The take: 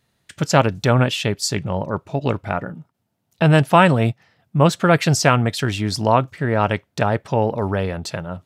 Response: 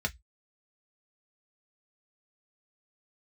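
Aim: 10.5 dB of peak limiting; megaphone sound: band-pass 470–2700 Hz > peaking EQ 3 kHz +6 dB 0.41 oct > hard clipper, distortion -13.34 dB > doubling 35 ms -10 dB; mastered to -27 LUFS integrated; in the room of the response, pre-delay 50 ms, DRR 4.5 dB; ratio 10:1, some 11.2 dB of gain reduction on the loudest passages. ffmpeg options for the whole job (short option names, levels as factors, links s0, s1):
-filter_complex "[0:a]acompressor=threshold=0.1:ratio=10,alimiter=limit=0.112:level=0:latency=1,asplit=2[s0][s1];[1:a]atrim=start_sample=2205,adelay=50[s2];[s1][s2]afir=irnorm=-1:irlink=0,volume=0.316[s3];[s0][s3]amix=inputs=2:normalize=0,highpass=470,lowpass=2700,equalizer=f=3000:t=o:w=0.41:g=6,asoftclip=type=hard:threshold=0.0531,asplit=2[s4][s5];[s5]adelay=35,volume=0.316[s6];[s4][s6]amix=inputs=2:normalize=0,volume=2.11"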